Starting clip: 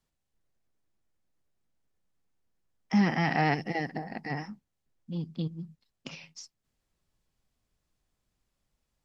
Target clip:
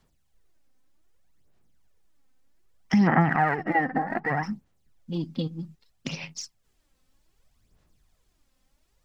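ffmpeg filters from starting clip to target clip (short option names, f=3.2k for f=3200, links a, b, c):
-filter_complex "[0:a]acompressor=threshold=-30dB:ratio=6,asettb=1/sr,asplit=3[a][b][c];[a]atrim=end=3.074[d];[b]atrim=start=3.07:end=4.43,asetpts=PTS-STARTPTS,afade=t=in:d=0.004:c=qsin,afade=t=out:st=1.356:d=0.004:c=qsin,lowpass=f=1.4k:t=q:w=3.3[e];[c]atrim=start=4.426[f];[d][e]acrossfade=d=0.004:c1=hsin:c2=qsin[g];[g][f]acrossfade=d=0.004:c1=qsin:c2=hsin,aphaser=in_gain=1:out_gain=1:delay=3.9:decay=0.57:speed=0.64:type=sinusoidal,volume=7.5dB"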